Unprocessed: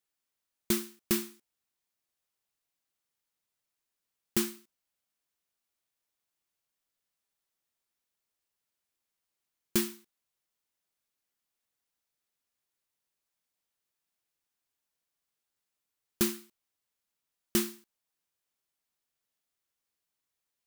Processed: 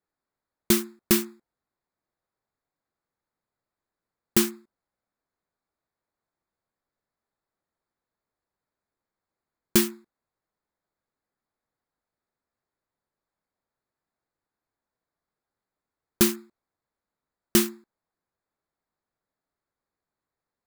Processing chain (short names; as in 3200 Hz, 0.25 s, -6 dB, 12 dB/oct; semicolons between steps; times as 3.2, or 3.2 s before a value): Wiener smoothing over 15 samples; gain +8 dB